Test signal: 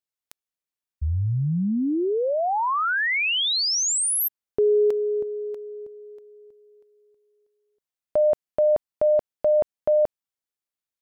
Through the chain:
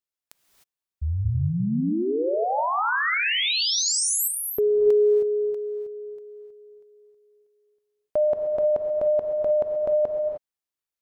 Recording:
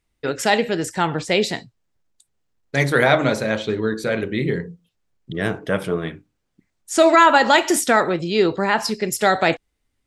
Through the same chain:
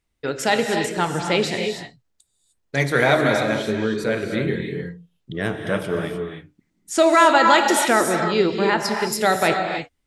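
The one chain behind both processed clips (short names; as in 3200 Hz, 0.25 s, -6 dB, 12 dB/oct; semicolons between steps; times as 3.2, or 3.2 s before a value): non-linear reverb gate 0.33 s rising, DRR 4 dB; gain -2 dB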